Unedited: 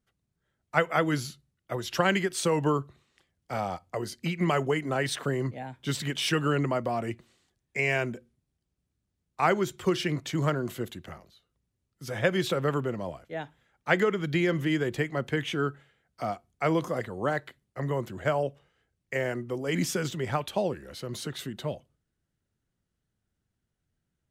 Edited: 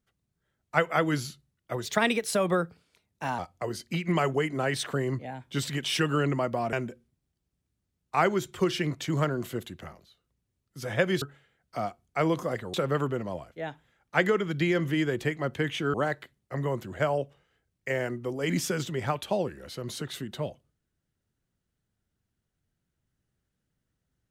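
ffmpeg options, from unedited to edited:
ffmpeg -i in.wav -filter_complex "[0:a]asplit=7[link_01][link_02][link_03][link_04][link_05][link_06][link_07];[link_01]atrim=end=1.854[link_08];[link_02]atrim=start=1.85:end=3.71,asetpts=PTS-STARTPTS,asetrate=53361,aresample=44100,atrim=end_sample=67790,asetpts=PTS-STARTPTS[link_09];[link_03]atrim=start=3.706:end=7.052[link_10];[link_04]atrim=start=7.978:end=12.472[link_11];[link_05]atrim=start=15.668:end=17.192[link_12];[link_06]atrim=start=12.468:end=15.672[link_13];[link_07]atrim=start=17.188[link_14];[link_08][link_09]acrossfade=duration=0.004:curve1=hsin:curve2=hsin[link_15];[link_15][link_10]acrossfade=duration=0.004:curve1=hsin:curve2=hsin[link_16];[link_16][link_11]acrossfade=duration=0.004:curve1=hsin:curve2=hsin[link_17];[link_17][link_12]acrossfade=duration=0.004:curve1=hsin:curve2=hsin[link_18];[link_18][link_13]acrossfade=duration=0.004:curve1=hsin:curve2=hsin[link_19];[link_19][link_14]acrossfade=duration=0.004:curve1=hsin:curve2=hsin" out.wav

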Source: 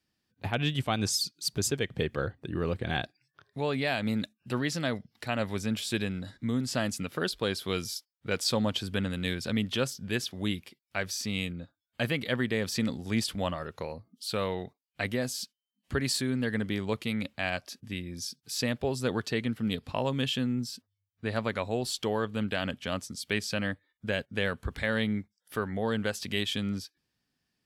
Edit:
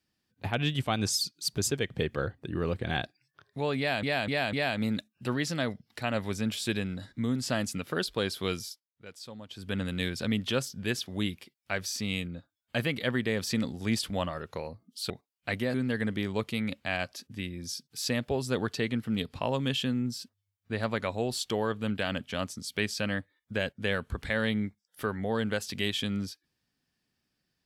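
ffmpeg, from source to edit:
ffmpeg -i in.wav -filter_complex "[0:a]asplit=8[link_01][link_02][link_03][link_04][link_05][link_06][link_07][link_08];[link_01]atrim=end=4.032[link_09];[link_02]atrim=start=3.778:end=4.032[link_10];[link_03]atrim=start=3.778:end=4.032[link_11];[link_04]atrim=start=3.778:end=8.11,asetpts=PTS-STARTPTS,afade=type=out:start_time=3.992:duration=0.34:silence=0.141254[link_12];[link_05]atrim=start=8.11:end=8.74,asetpts=PTS-STARTPTS,volume=-17dB[link_13];[link_06]atrim=start=8.74:end=14.352,asetpts=PTS-STARTPTS,afade=type=in:duration=0.34:silence=0.141254[link_14];[link_07]atrim=start=14.618:end=15.262[link_15];[link_08]atrim=start=16.268[link_16];[link_09][link_10]acrossfade=duration=0.004:curve1=hsin:curve2=hsin[link_17];[link_17][link_11]acrossfade=duration=0.004:curve1=hsin:curve2=hsin[link_18];[link_12][link_13][link_14]concat=n=3:v=0:a=1[link_19];[link_18][link_19]acrossfade=duration=0.004:curve1=hsin:curve2=hsin[link_20];[link_20][link_15]acrossfade=duration=0.004:curve1=hsin:curve2=hsin[link_21];[link_21][link_16]acrossfade=duration=0.004:curve1=hsin:curve2=hsin" out.wav

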